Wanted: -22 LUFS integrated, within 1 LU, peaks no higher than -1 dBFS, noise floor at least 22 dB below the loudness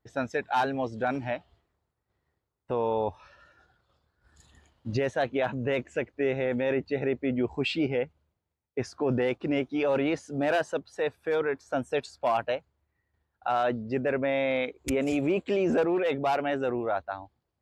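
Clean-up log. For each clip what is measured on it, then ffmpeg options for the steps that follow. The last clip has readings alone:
loudness -29.0 LUFS; peak -17.5 dBFS; loudness target -22.0 LUFS
-> -af "volume=7dB"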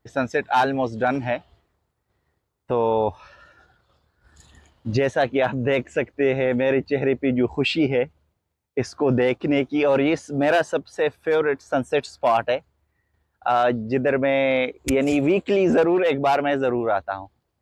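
loudness -22.0 LUFS; peak -10.5 dBFS; noise floor -75 dBFS

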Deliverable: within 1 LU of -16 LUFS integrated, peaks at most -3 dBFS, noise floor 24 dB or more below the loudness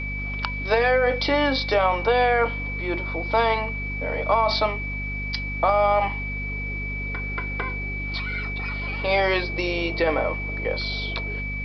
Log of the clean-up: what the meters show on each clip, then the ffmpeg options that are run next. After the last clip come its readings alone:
hum 50 Hz; harmonics up to 250 Hz; hum level -29 dBFS; steady tone 2300 Hz; tone level -30 dBFS; loudness -24.0 LUFS; peak -7.0 dBFS; loudness target -16.0 LUFS
-> -af "bandreject=f=50:t=h:w=4,bandreject=f=100:t=h:w=4,bandreject=f=150:t=h:w=4,bandreject=f=200:t=h:w=4,bandreject=f=250:t=h:w=4"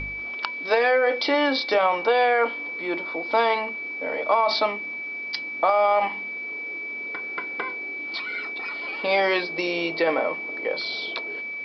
hum none; steady tone 2300 Hz; tone level -30 dBFS
-> -af "bandreject=f=2.3k:w=30"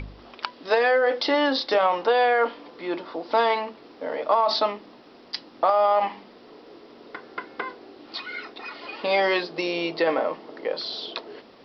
steady tone none; loudness -24.0 LUFS; peak -7.0 dBFS; loudness target -16.0 LUFS
-> -af "volume=8dB,alimiter=limit=-3dB:level=0:latency=1"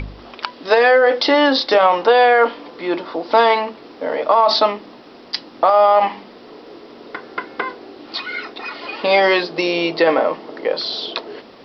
loudness -16.0 LUFS; peak -3.0 dBFS; noise floor -42 dBFS

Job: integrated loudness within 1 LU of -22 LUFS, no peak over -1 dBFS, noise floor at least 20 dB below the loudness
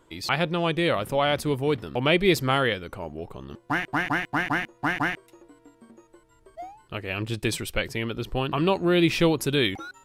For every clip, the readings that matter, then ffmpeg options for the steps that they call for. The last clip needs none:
loudness -25.0 LUFS; peak -8.0 dBFS; loudness target -22.0 LUFS
-> -af "volume=3dB"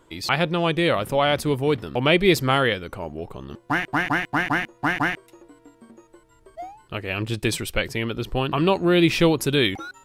loudness -22.0 LUFS; peak -5.0 dBFS; noise floor -57 dBFS

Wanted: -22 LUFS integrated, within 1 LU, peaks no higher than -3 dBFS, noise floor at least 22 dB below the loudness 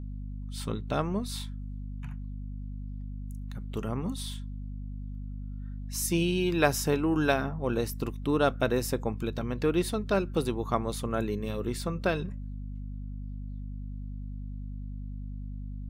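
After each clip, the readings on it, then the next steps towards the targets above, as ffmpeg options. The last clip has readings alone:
hum 50 Hz; harmonics up to 250 Hz; hum level -35 dBFS; loudness -32.0 LUFS; peak -10.0 dBFS; loudness target -22.0 LUFS
-> -af "bandreject=f=50:t=h:w=4,bandreject=f=100:t=h:w=4,bandreject=f=150:t=h:w=4,bandreject=f=200:t=h:w=4,bandreject=f=250:t=h:w=4"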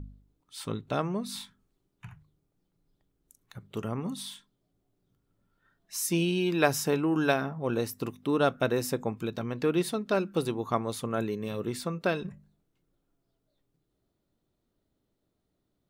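hum none; loudness -30.0 LUFS; peak -9.5 dBFS; loudness target -22.0 LUFS
-> -af "volume=8dB,alimiter=limit=-3dB:level=0:latency=1"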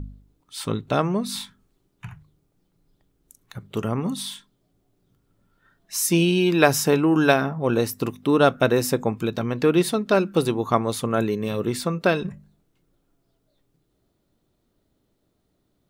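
loudness -22.0 LUFS; peak -3.0 dBFS; noise floor -71 dBFS

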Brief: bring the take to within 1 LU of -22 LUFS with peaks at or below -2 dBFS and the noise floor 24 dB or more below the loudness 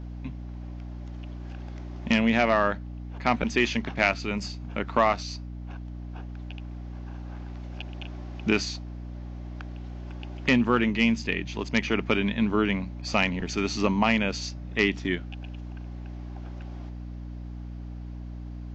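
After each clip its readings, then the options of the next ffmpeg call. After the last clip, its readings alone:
hum 60 Hz; harmonics up to 300 Hz; hum level -35 dBFS; loudness -26.0 LUFS; peak -8.0 dBFS; loudness target -22.0 LUFS
-> -af "bandreject=f=60:t=h:w=6,bandreject=f=120:t=h:w=6,bandreject=f=180:t=h:w=6,bandreject=f=240:t=h:w=6,bandreject=f=300:t=h:w=6"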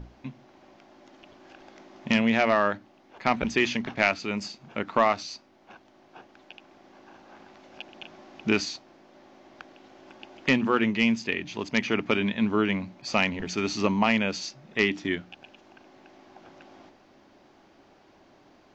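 hum none; loudness -26.0 LUFS; peak -8.5 dBFS; loudness target -22.0 LUFS
-> -af "volume=4dB"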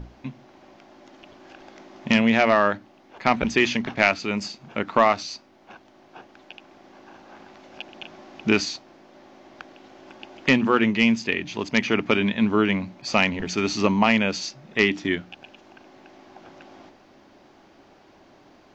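loudness -22.0 LUFS; peak -4.5 dBFS; noise floor -54 dBFS

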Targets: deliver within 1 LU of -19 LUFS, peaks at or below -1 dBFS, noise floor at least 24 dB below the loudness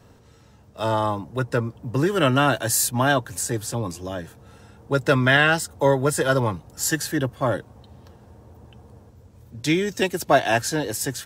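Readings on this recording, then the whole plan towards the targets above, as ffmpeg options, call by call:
loudness -22.0 LUFS; peak -4.5 dBFS; loudness target -19.0 LUFS
-> -af "volume=3dB"

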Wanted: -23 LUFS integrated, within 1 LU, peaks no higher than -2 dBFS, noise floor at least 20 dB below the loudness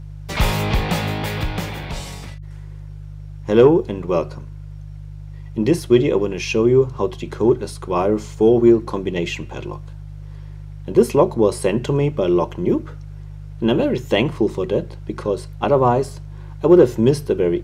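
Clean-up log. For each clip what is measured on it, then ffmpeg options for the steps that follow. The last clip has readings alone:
hum 50 Hz; harmonics up to 150 Hz; hum level -32 dBFS; loudness -18.5 LUFS; peak -2.0 dBFS; loudness target -23.0 LUFS
-> -af "bandreject=f=50:t=h:w=4,bandreject=f=100:t=h:w=4,bandreject=f=150:t=h:w=4"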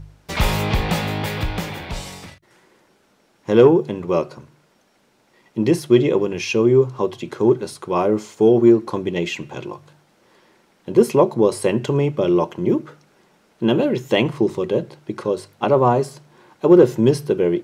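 hum none; loudness -18.5 LUFS; peak -2.5 dBFS; loudness target -23.0 LUFS
-> -af "volume=-4.5dB"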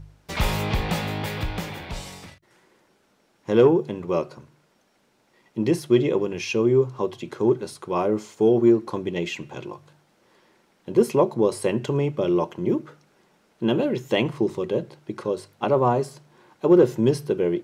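loudness -23.0 LUFS; peak -7.0 dBFS; noise floor -64 dBFS

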